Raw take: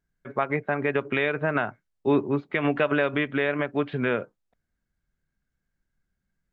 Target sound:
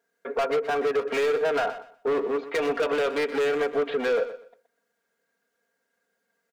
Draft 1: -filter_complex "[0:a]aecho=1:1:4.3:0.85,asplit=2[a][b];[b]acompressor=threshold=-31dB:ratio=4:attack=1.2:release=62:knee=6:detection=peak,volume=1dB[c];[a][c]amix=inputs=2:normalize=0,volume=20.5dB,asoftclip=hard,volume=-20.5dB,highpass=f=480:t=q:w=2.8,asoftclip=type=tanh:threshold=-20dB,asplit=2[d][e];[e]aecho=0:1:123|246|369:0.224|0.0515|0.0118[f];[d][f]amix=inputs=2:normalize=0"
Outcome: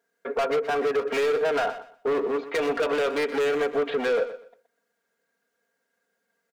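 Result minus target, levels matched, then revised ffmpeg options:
compressor: peak gain reduction -8 dB
-filter_complex "[0:a]aecho=1:1:4.3:0.85,asplit=2[a][b];[b]acompressor=threshold=-41.5dB:ratio=4:attack=1.2:release=62:knee=6:detection=peak,volume=1dB[c];[a][c]amix=inputs=2:normalize=0,volume=20.5dB,asoftclip=hard,volume=-20.5dB,highpass=f=480:t=q:w=2.8,asoftclip=type=tanh:threshold=-20dB,asplit=2[d][e];[e]aecho=0:1:123|246|369:0.224|0.0515|0.0118[f];[d][f]amix=inputs=2:normalize=0"

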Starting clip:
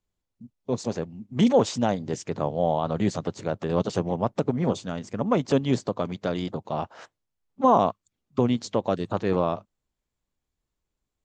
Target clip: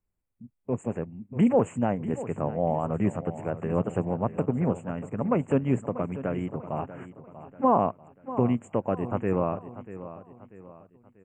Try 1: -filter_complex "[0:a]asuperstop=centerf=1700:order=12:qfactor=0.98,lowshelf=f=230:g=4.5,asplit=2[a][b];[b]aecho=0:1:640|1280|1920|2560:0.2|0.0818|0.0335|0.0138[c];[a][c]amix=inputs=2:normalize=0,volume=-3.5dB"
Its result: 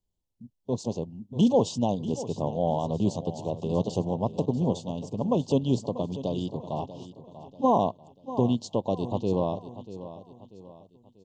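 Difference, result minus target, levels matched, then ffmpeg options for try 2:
4000 Hz band +15.0 dB
-filter_complex "[0:a]asuperstop=centerf=4600:order=12:qfactor=0.98,lowshelf=f=230:g=4.5,asplit=2[a][b];[b]aecho=0:1:640|1280|1920|2560:0.2|0.0818|0.0335|0.0138[c];[a][c]amix=inputs=2:normalize=0,volume=-3.5dB"

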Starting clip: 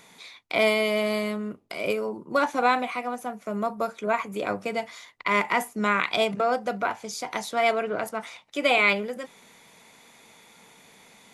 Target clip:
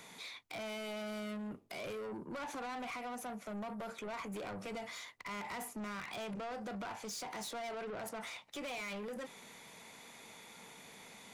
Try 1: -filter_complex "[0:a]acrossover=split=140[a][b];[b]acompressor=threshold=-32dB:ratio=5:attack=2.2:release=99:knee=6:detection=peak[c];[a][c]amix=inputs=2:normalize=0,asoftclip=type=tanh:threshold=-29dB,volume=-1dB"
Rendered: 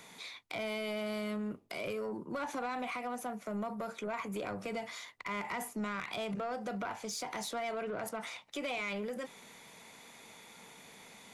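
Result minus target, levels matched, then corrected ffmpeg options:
soft clip: distortion -9 dB
-filter_complex "[0:a]acrossover=split=140[a][b];[b]acompressor=threshold=-32dB:ratio=5:attack=2.2:release=99:knee=6:detection=peak[c];[a][c]amix=inputs=2:normalize=0,asoftclip=type=tanh:threshold=-38.5dB,volume=-1dB"

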